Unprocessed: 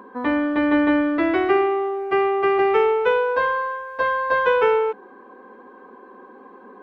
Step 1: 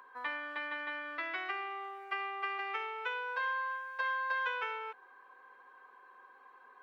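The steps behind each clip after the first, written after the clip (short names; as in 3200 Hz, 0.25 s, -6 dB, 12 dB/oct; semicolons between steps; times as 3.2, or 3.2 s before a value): compressor, threshold -20 dBFS, peak gain reduction 7 dB; HPF 1400 Hz 12 dB/oct; gain -4.5 dB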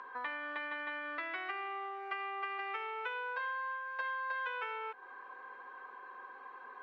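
compressor 2.5:1, threshold -49 dBFS, peak gain reduction 12.5 dB; air absorption 130 m; gain +8.5 dB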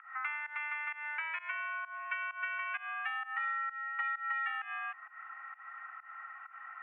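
pump 130 bpm, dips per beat 1, -19 dB, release 0.165 s; mistuned SSB +300 Hz 520–2400 Hz; gain +3 dB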